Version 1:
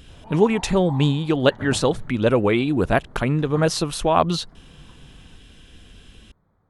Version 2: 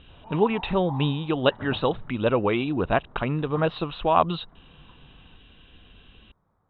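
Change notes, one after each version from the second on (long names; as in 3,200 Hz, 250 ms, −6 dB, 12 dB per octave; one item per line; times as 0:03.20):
master: add Chebyshev low-pass with heavy ripple 3,900 Hz, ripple 6 dB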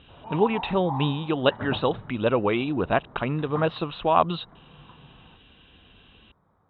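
background +5.5 dB
master: add high-pass filter 79 Hz 6 dB per octave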